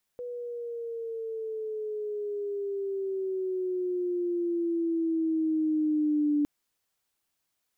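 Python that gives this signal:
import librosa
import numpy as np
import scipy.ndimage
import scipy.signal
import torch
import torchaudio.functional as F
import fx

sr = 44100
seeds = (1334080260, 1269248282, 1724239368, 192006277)

y = fx.riser_tone(sr, length_s=6.26, level_db=-22.0, wave='sine', hz=491.0, rise_st=-9.0, swell_db=12.0)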